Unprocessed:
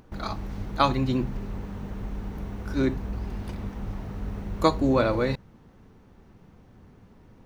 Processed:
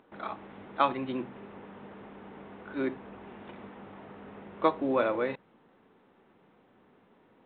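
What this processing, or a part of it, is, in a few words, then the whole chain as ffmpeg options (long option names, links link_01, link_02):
telephone: -af "highpass=320,lowpass=3600,volume=-3dB" -ar 8000 -c:a pcm_mulaw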